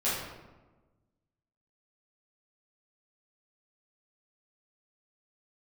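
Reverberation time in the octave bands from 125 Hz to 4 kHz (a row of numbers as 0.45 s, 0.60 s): 1.7 s, 1.5 s, 1.3 s, 1.1 s, 0.90 s, 0.65 s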